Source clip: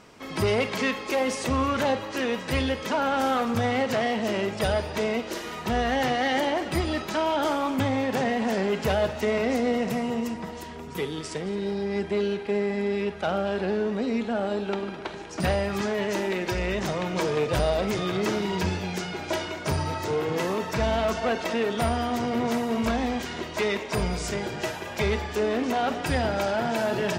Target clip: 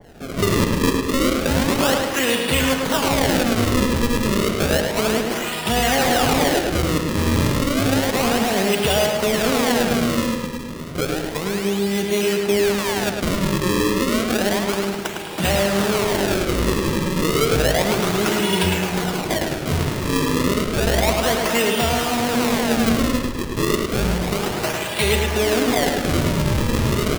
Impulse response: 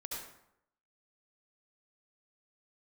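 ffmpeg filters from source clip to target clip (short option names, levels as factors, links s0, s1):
-filter_complex "[0:a]equalizer=f=2900:t=o:w=0.39:g=8,asplit=2[s0][s1];[s1]alimiter=limit=0.126:level=0:latency=1,volume=0.794[s2];[s0][s2]amix=inputs=2:normalize=0,acrusher=samples=34:mix=1:aa=0.000001:lfo=1:lforange=54.4:lforate=0.31,asplit=2[s3][s4];[s4]adelay=106,lowpass=f=4800:p=1,volume=0.631,asplit=2[s5][s6];[s6]adelay=106,lowpass=f=4800:p=1,volume=0.48,asplit=2[s7][s8];[s8]adelay=106,lowpass=f=4800:p=1,volume=0.48,asplit=2[s9][s10];[s10]adelay=106,lowpass=f=4800:p=1,volume=0.48,asplit=2[s11][s12];[s12]adelay=106,lowpass=f=4800:p=1,volume=0.48,asplit=2[s13][s14];[s14]adelay=106,lowpass=f=4800:p=1,volume=0.48[s15];[s3][s5][s7][s9][s11][s13][s15]amix=inputs=7:normalize=0,adynamicequalizer=threshold=0.02:dfrequency=2100:dqfactor=0.7:tfrequency=2100:tqfactor=0.7:attack=5:release=100:ratio=0.375:range=2:mode=boostabove:tftype=highshelf"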